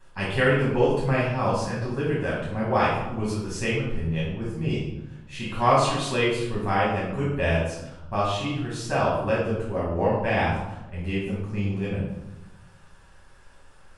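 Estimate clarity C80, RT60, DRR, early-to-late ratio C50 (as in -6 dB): 4.5 dB, 0.95 s, -7.0 dB, 1.0 dB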